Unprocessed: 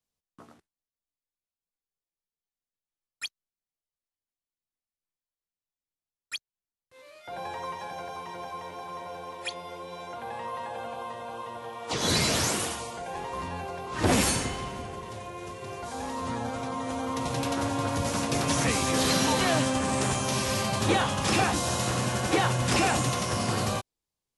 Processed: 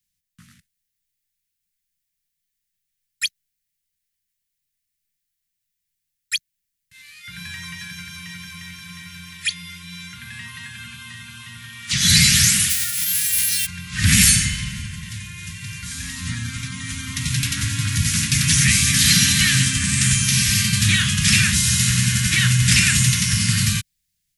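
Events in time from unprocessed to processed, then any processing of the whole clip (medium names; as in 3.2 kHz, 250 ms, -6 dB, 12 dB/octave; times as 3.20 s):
12.69–13.65 s: formants flattened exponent 0.1
whole clip: elliptic band-stop 180–1800 Hz, stop band 80 dB; treble shelf 10 kHz +6.5 dB; level rider gain up to 4 dB; trim +8.5 dB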